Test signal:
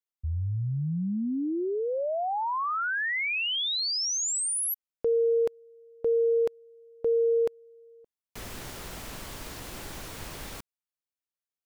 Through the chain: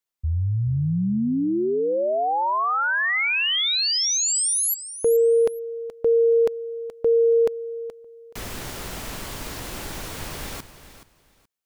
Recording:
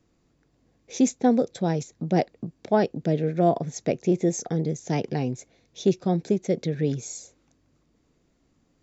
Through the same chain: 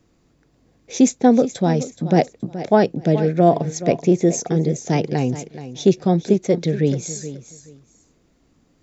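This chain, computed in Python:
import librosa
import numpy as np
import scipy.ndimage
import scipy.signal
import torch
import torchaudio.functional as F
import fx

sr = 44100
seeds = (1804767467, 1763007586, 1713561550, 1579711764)

y = fx.echo_feedback(x, sr, ms=425, feedback_pct=21, wet_db=-13.5)
y = F.gain(torch.from_numpy(y), 6.5).numpy()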